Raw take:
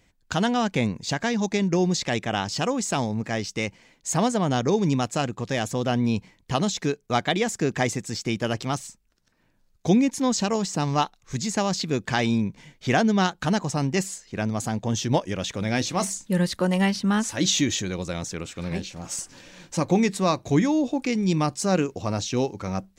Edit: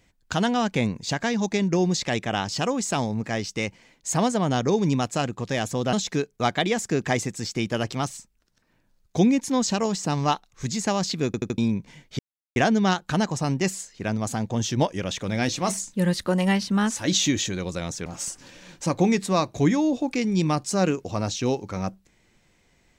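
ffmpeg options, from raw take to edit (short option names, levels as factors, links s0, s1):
-filter_complex "[0:a]asplit=8[s0][s1][s2][s3][s4][s5][s6][s7];[s0]atrim=end=5.932[s8];[s1]atrim=start=6.628:end=12.042[s9];[s2]atrim=start=11.958:end=12.042[s10];[s3]atrim=start=11.958:end=12.042[s11];[s4]atrim=start=11.958:end=12.042[s12];[s5]atrim=start=12.278:end=12.89,asetpts=PTS-STARTPTS,afade=t=out:st=0.608:d=0.004:c=hsin,apad=pad_dur=0.37[s13];[s6]atrim=start=12.89:end=18.392,asetpts=PTS-STARTPTS,afade=t=in:d=0.004:c=hsin[s14];[s7]atrim=start=18.968[s15];[s8][s9]acrossfade=d=0.004:c1=hsin:c2=hsin[s16];[s16][s10]acrossfade=d=0.004:c1=hsin:c2=hsin[s17];[s17][s11]acrossfade=d=0.004:c1=hsin:c2=hsin[s18];[s18][s12]acrossfade=d=0.004:c1=hsin:c2=hsin[s19];[s13][s14]concat=n=2:v=0:a=1[s20];[s19][s20]acrossfade=d=0.004:c1=hsin:c2=hsin[s21];[s21][s15]acrossfade=d=0.004:c1=hsin:c2=hsin"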